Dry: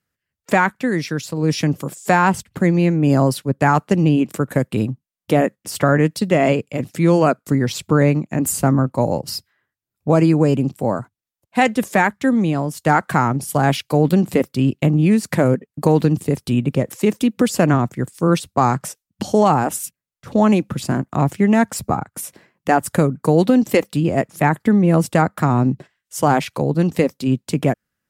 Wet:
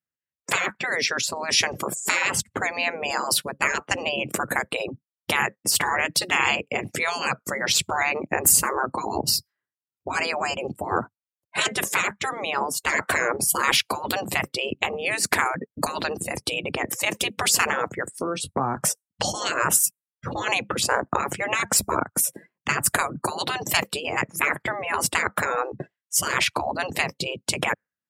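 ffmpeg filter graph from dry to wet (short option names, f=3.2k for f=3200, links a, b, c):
-filter_complex "[0:a]asettb=1/sr,asplit=3[a][b][c];[a]atrim=end=18.154[d];[b]atrim=start=18.15:end=18.77,asetpts=PTS-STARTPTS,afade=t=in:d=0.004:c=qsin,afade=t=out:st=0.616:d=0.004:c=qsin,acompressor=threshold=-27dB:ratio=10:attack=3.2:release=140:knee=1:detection=peak,bandreject=f=3.6k:w=29,asplit=2[e][f];[f]adelay=22,volume=-9dB[g];[e][g]amix=inputs=2:normalize=0,atrim=end_sample=27342[h];[c]atrim=start=18.766[i];[d][h]acrossfade=d=0.004:c1=hsin:c2=qsin[j];[j][i]acrossfade=d=0.004:c1=qsin:c2=hsin,afftfilt=real='re*lt(hypot(re,im),0.224)':imag='im*lt(hypot(re,im),0.224)':win_size=1024:overlap=0.75,lowshelf=f=66:g=-10.5,afftdn=nr=25:nf=-44,volume=8dB"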